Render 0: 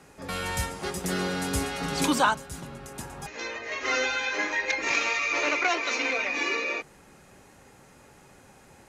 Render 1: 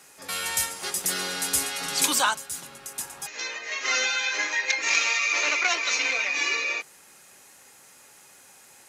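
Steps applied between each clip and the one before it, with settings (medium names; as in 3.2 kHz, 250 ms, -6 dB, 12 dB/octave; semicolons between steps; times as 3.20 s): tilt EQ +4 dB/octave; trim -2 dB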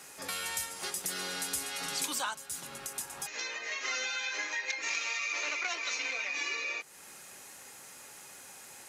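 compression 2.5:1, threshold -40 dBFS, peak gain reduction 15 dB; trim +2 dB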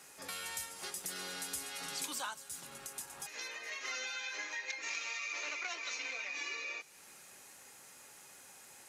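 feedback echo behind a high-pass 218 ms, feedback 67%, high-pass 4.7 kHz, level -17 dB; trim -6 dB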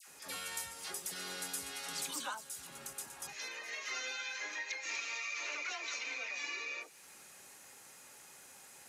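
phase dispersion lows, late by 76 ms, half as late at 1.3 kHz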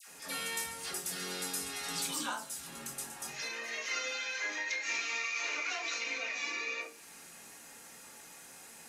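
simulated room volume 260 m³, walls furnished, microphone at 1.7 m; trim +1.5 dB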